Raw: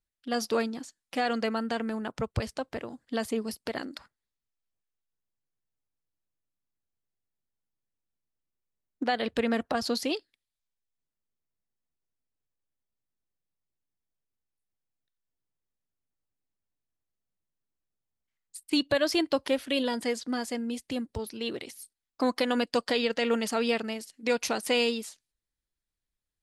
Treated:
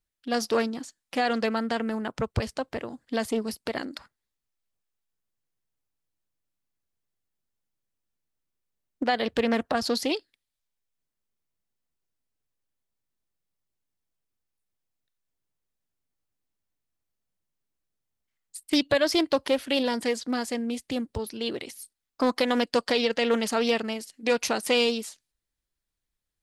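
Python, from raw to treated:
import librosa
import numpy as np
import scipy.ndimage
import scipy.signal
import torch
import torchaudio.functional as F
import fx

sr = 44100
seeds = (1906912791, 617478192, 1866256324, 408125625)

y = fx.doppler_dist(x, sr, depth_ms=0.35)
y = y * librosa.db_to_amplitude(3.0)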